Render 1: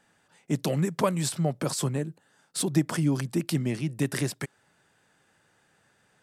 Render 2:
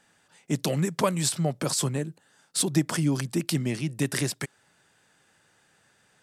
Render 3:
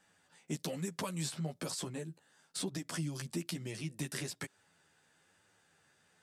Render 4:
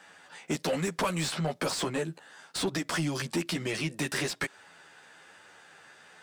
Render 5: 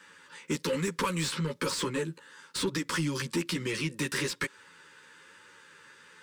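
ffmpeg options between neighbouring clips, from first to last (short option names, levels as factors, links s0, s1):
-af "equalizer=f=6200:t=o:w=2.9:g=5"
-filter_complex "[0:a]acrossover=split=3000|7000[s0][s1][s2];[s0]acompressor=threshold=0.0282:ratio=4[s3];[s1]acompressor=threshold=0.0126:ratio=4[s4];[s2]acompressor=threshold=0.00891:ratio=4[s5];[s3][s4][s5]amix=inputs=3:normalize=0,flanger=delay=10:depth=3.5:regen=2:speed=1.1:shape=triangular,volume=0.708"
-filter_complex "[0:a]asplit=2[s0][s1];[s1]highpass=f=720:p=1,volume=12.6,asoftclip=type=tanh:threshold=0.0841[s2];[s0][s2]amix=inputs=2:normalize=0,lowpass=f=2500:p=1,volume=0.501,volume=1.5"
-af "asuperstop=centerf=700:order=12:qfactor=2.4"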